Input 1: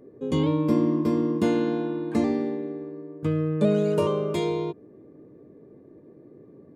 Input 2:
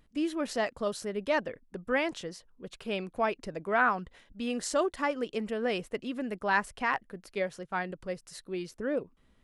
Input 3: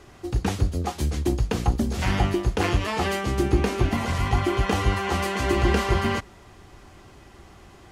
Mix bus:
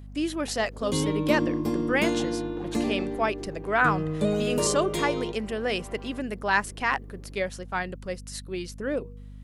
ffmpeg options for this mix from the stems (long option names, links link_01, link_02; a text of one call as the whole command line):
ffmpeg -i stem1.wav -i stem2.wav -i stem3.wav -filter_complex "[0:a]highshelf=frequency=8400:gain=7,adelay=600,volume=-4dB[link_01];[1:a]bandreject=frequency=239.1:width_type=h:width=4,bandreject=frequency=478.2:width_type=h:width=4,aeval=exprs='val(0)+0.00708*(sin(2*PI*50*n/s)+sin(2*PI*2*50*n/s)/2+sin(2*PI*3*50*n/s)/3+sin(2*PI*4*50*n/s)/4+sin(2*PI*5*50*n/s)/5)':channel_layout=same,volume=2dB,asplit=2[link_02][link_03];[2:a]bandpass=frequency=620:width_type=q:width=1.6:csg=0,volume=-15.5dB[link_04];[link_03]apad=whole_len=348930[link_05];[link_04][link_05]sidechaincompress=threshold=-32dB:ratio=8:attack=16:release=127[link_06];[link_01][link_02][link_06]amix=inputs=3:normalize=0,highshelf=frequency=2700:gain=7.5" out.wav